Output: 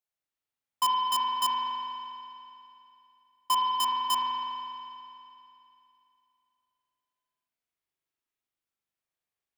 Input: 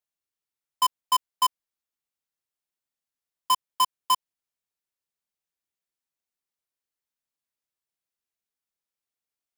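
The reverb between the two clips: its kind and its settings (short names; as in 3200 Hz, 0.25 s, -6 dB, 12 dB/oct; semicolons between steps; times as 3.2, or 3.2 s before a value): spring tank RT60 2.8 s, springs 40 ms, chirp 40 ms, DRR -4.5 dB; gain -4 dB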